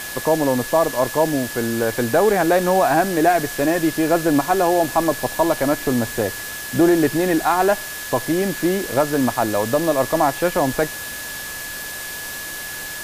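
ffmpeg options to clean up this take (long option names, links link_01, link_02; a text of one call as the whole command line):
ffmpeg -i in.wav -af "bandreject=frequency=1700:width=30,afwtdn=0.028" out.wav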